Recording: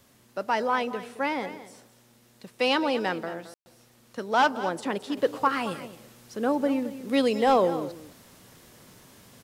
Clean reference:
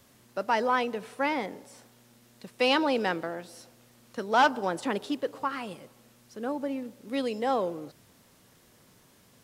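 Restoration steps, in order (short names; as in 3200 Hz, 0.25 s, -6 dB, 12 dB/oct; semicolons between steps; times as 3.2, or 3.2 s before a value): clip repair -11.5 dBFS; room tone fill 3.54–3.66; inverse comb 0.219 s -14 dB; gain 0 dB, from 5.17 s -7 dB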